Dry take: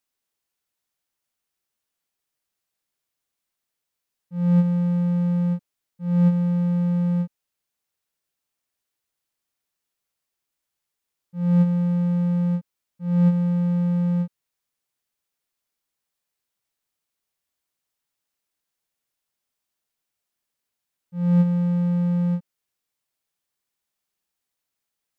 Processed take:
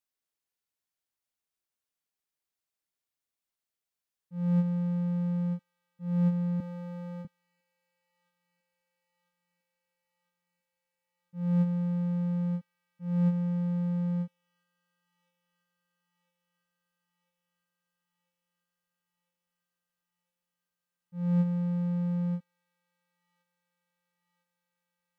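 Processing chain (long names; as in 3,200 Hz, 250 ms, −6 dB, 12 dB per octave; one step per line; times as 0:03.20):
0:06.60–0:07.25: high-pass filter 310 Hz 12 dB per octave
delay with a high-pass on its return 1,001 ms, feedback 78%, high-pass 1,900 Hz, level −20 dB
level −8 dB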